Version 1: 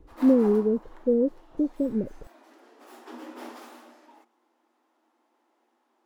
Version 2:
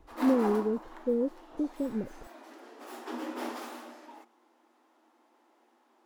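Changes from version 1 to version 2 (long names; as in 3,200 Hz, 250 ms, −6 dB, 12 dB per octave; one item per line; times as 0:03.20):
speech −6.0 dB
background +4.5 dB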